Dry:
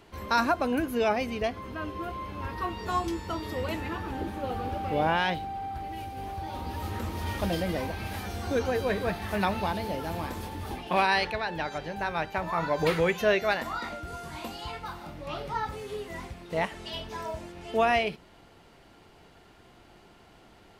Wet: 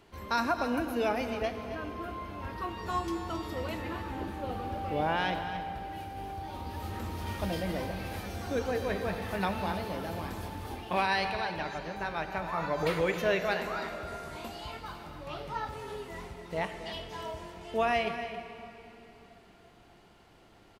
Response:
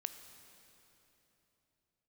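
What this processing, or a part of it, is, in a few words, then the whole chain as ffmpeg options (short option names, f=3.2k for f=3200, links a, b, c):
cave: -filter_complex "[0:a]aecho=1:1:270:0.266[a];[1:a]atrim=start_sample=2205[b];[a][b]afir=irnorm=-1:irlink=0,volume=-2dB"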